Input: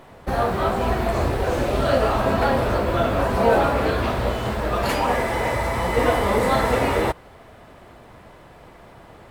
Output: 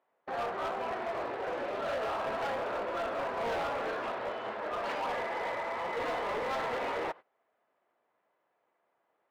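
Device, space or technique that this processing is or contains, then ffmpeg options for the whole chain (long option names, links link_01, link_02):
walkie-talkie: -af "highpass=460,lowpass=2500,asoftclip=type=hard:threshold=-22dB,agate=range=-20dB:threshold=-37dB:ratio=16:detection=peak,volume=-8.5dB"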